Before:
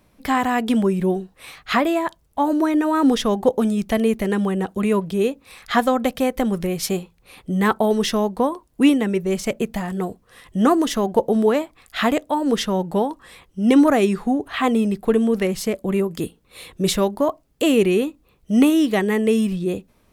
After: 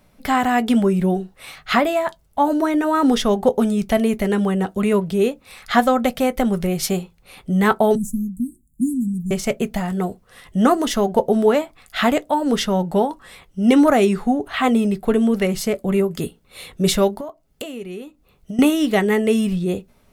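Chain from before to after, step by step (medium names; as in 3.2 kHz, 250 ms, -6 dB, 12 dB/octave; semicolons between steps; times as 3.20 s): 7.95–9.31 s: Chebyshev band-stop 260–7200 Hz, order 5; 17.12–18.59 s: compression 12:1, threshold -30 dBFS, peak gain reduction 18.5 dB; reverberation RT60 0.10 s, pre-delay 5 ms, DRR 11.5 dB; trim +1.5 dB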